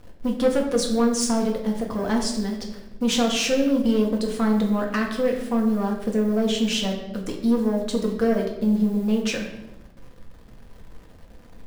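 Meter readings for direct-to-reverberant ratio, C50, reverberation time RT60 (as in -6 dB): -0.5 dB, 6.5 dB, 0.95 s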